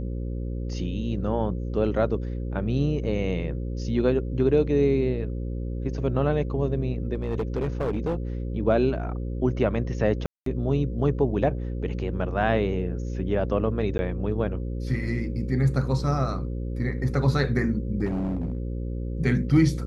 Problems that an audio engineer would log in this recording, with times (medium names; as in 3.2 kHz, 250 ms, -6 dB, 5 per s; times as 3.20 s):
buzz 60 Hz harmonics 9 -30 dBFS
7.15–8.15 s: clipped -22 dBFS
10.26–10.46 s: dropout 203 ms
13.98–13.99 s: dropout 10 ms
18.05–18.58 s: clipped -24 dBFS